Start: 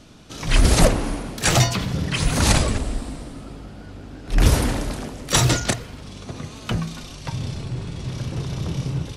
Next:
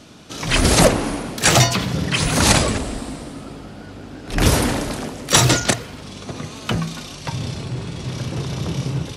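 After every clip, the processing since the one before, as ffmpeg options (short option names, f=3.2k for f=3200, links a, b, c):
-af "highpass=f=140:p=1,asoftclip=type=hard:threshold=-6.5dB,volume=5dB"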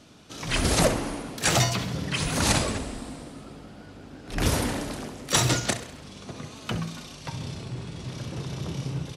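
-af "aecho=1:1:66|132|198|264|330:0.211|0.112|0.0594|0.0315|0.0167,volume=-8.5dB"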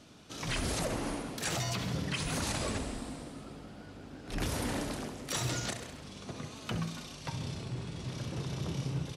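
-af "alimiter=limit=-20.5dB:level=0:latency=1:release=127,volume=-3.5dB"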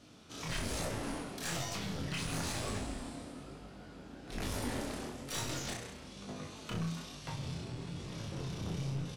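-filter_complex "[0:a]aeval=exprs='clip(val(0),-1,0.0168)':c=same,asplit=2[a][b];[b]adelay=36,volume=-6dB[c];[a][c]amix=inputs=2:normalize=0,flanger=delay=19.5:depth=6.1:speed=1.1"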